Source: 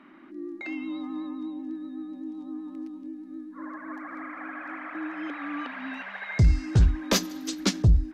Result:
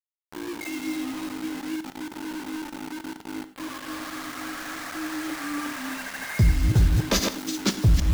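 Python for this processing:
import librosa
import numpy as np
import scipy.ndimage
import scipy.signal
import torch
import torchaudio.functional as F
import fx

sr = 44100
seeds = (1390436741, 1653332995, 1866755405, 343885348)

y = fx.reverse_delay(x, sr, ms=160, wet_db=-4.0)
y = fx.quant_dither(y, sr, seeds[0], bits=6, dither='none')
y = fx.rev_gated(y, sr, seeds[1], gate_ms=130, shape='flat', drr_db=11.5)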